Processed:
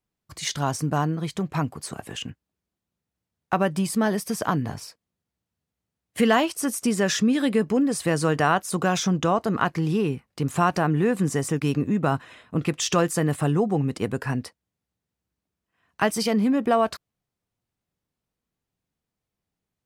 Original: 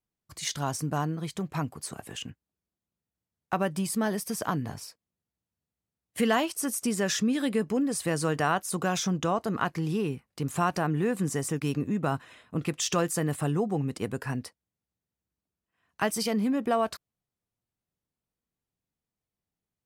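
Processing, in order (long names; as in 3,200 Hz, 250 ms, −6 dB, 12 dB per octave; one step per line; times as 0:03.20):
high-shelf EQ 7,100 Hz −6.5 dB
level +5.5 dB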